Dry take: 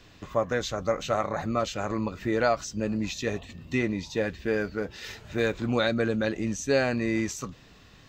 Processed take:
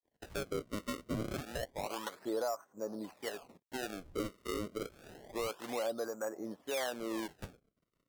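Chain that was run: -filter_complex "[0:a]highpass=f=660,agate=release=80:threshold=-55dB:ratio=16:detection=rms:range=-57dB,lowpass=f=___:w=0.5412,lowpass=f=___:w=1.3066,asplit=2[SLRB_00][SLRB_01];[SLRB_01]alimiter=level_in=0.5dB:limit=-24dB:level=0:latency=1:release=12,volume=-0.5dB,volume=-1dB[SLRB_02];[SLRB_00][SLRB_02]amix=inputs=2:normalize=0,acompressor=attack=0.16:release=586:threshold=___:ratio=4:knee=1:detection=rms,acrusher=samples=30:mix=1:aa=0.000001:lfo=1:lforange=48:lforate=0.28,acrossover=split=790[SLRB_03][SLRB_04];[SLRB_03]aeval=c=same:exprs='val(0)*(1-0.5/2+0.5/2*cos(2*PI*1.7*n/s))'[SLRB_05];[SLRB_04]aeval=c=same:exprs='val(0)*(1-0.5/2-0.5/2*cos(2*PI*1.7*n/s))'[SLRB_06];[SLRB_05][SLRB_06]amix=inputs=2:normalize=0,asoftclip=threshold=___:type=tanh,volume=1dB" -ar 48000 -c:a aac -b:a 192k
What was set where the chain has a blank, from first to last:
1100, 1100, -28dB, -25dB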